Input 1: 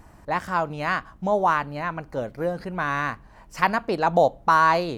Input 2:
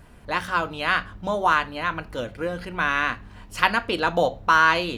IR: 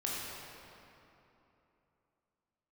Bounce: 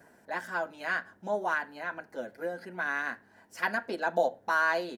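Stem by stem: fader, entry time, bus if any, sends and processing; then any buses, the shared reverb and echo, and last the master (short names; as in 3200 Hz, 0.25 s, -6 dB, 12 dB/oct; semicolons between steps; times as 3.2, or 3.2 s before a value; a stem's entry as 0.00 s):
-12.5 dB, 0.00 s, no send, high shelf 5200 Hz +7.5 dB; comb 4.6 ms, depth 54%
-1.0 dB, 3.7 ms, no send, resonant high shelf 2100 Hz -9 dB, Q 3; auto duck -8 dB, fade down 0.30 s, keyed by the first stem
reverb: off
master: HPF 280 Hz 12 dB/oct; bell 1200 Hz -14.5 dB 0.42 oct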